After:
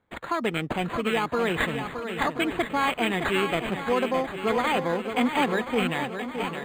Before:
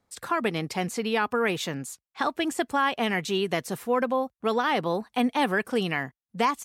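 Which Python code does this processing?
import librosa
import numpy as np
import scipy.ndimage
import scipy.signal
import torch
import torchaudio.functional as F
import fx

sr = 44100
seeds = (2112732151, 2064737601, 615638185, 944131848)

y = fx.fade_out_tail(x, sr, length_s=0.67)
y = fx.band_shelf(y, sr, hz=4100.0, db=11.5, octaves=1.1)
y = fx.notch(y, sr, hz=1500.0, q=12.0)
y = fx.echo_swing(y, sr, ms=1027, ratio=1.5, feedback_pct=41, wet_db=-8)
y = np.interp(np.arange(len(y)), np.arange(len(y))[::8], y[::8])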